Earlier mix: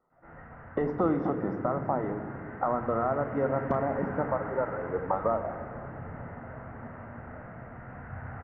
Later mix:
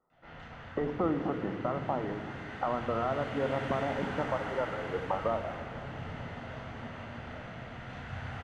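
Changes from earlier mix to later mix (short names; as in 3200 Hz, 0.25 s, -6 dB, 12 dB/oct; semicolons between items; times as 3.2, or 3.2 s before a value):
speech -3.5 dB; background: remove inverse Chebyshev low-pass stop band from 3500 Hz, stop band 40 dB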